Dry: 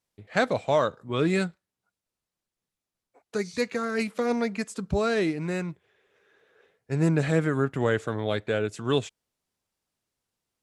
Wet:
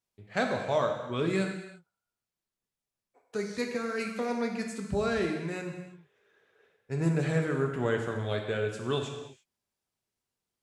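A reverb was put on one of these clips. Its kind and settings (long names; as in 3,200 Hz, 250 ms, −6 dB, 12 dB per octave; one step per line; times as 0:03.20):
reverb whose tail is shaped and stops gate 370 ms falling, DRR 2 dB
level −6 dB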